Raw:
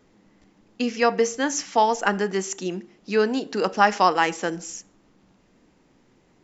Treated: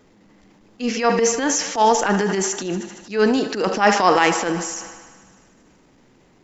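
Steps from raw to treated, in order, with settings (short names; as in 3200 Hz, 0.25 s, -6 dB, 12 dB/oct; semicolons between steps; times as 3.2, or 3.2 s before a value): thinning echo 76 ms, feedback 78%, high-pass 240 Hz, level -17 dB; transient shaper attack -12 dB, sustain +5 dB; gain +5.5 dB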